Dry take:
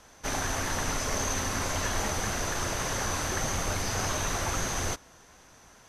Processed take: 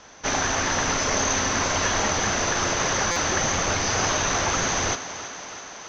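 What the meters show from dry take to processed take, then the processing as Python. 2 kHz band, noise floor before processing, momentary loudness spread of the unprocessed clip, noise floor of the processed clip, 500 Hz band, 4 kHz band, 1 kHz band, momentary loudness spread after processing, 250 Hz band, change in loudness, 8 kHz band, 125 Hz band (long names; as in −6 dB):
+8.5 dB, −55 dBFS, 2 LU, −40 dBFS, +7.5 dB, +8.5 dB, +8.0 dB, 6 LU, +6.5 dB, +7.5 dB, +8.0 dB, +2.5 dB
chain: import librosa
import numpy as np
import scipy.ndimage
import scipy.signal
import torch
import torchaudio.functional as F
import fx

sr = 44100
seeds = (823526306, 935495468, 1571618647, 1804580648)

y = scipy.signal.sosfilt(scipy.signal.ellip(4, 1.0, 50, 6300.0, 'lowpass', fs=sr, output='sos'), x)
y = fx.low_shelf(y, sr, hz=100.0, db=-10.5)
y = fx.echo_thinned(y, sr, ms=329, feedback_pct=73, hz=150.0, wet_db=-13.0)
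y = fx.buffer_glitch(y, sr, at_s=(3.11,), block=256, repeats=8)
y = F.gain(torch.from_numpy(y), 8.5).numpy()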